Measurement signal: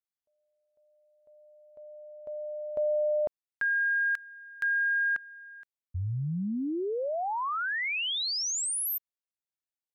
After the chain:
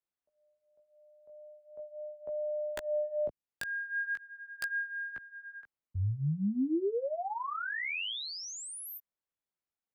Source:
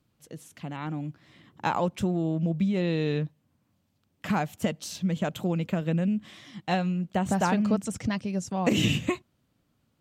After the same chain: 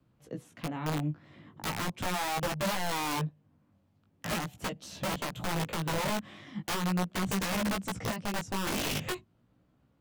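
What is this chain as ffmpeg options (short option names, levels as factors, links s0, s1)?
-filter_complex "[0:a]acrossover=split=1600[s0][s1];[s0]acontrast=61[s2];[s2][s1]amix=inputs=2:normalize=0,bass=f=250:g=0,treble=f=4000:g=-7,acrossover=split=87|360|2800[s3][s4][s5][s6];[s3]acompressor=threshold=0.00562:ratio=4[s7];[s4]acompressor=threshold=0.0355:ratio=4[s8];[s5]acompressor=threshold=0.0178:ratio=4[s9];[s6]acompressor=threshold=0.0126:ratio=4[s10];[s7][s8][s9][s10]amix=inputs=4:normalize=0,aeval=exprs='(mod(15*val(0)+1,2)-1)/15':c=same,flanger=delay=15:depth=5.2:speed=0.4"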